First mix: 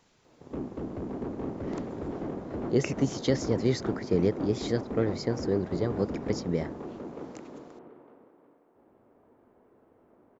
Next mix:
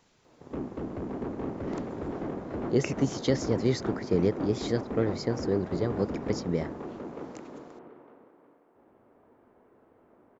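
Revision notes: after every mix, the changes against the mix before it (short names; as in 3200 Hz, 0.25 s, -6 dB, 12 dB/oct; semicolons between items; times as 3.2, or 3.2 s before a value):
background: add bell 1800 Hz +3.5 dB 2.3 oct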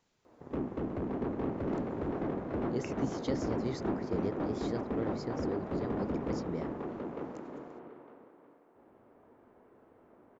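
speech -10.5 dB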